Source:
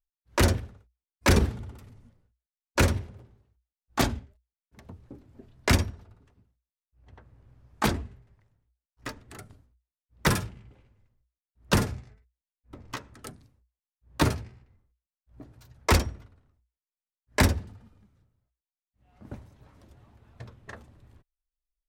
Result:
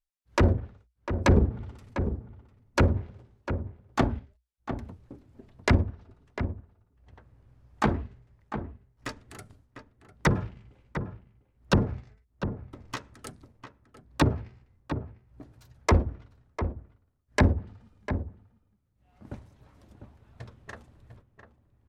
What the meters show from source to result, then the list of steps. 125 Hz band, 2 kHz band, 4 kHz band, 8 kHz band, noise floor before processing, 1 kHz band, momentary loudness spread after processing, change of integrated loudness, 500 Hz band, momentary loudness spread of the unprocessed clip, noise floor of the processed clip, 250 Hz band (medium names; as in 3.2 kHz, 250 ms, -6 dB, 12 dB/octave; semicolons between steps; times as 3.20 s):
+2.0 dB, -2.5 dB, -6.5 dB, -9.0 dB, under -85 dBFS, 0.0 dB, 21 LU, -2.0 dB, +1.0 dB, 21 LU, -71 dBFS, +1.5 dB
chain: low-pass that closes with the level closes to 640 Hz, closed at -19 dBFS; in parallel at -8 dB: crossover distortion -43.5 dBFS; on the sum: echo from a far wall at 120 m, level -9 dB; trim -1.5 dB